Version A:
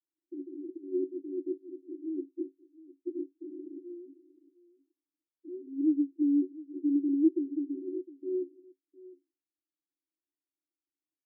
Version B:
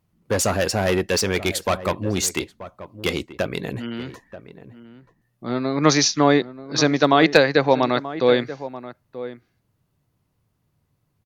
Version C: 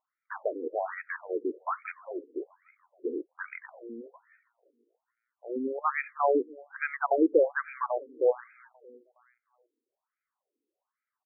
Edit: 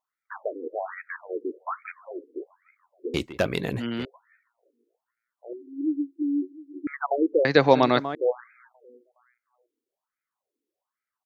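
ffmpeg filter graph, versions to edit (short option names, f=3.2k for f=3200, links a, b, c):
-filter_complex "[1:a]asplit=2[a][b];[2:a]asplit=4[c][d][e][f];[c]atrim=end=3.142[g];[a]atrim=start=3.138:end=4.052[h];[d]atrim=start=4.048:end=5.532[i];[0:a]atrim=start=5.528:end=6.872[j];[e]atrim=start=6.868:end=7.452[k];[b]atrim=start=7.448:end=8.152[l];[f]atrim=start=8.148[m];[g][h]acrossfade=d=0.004:c1=hsin:c2=hsin[n];[n][i]acrossfade=d=0.004:c1=hsin:c2=hsin[o];[o][j]acrossfade=d=0.004:c1=hsin:c2=hsin[p];[p][k]acrossfade=d=0.004:c1=hsin:c2=hsin[q];[q][l]acrossfade=d=0.004:c1=hsin:c2=hsin[r];[r][m]acrossfade=d=0.004:c1=hsin:c2=hsin"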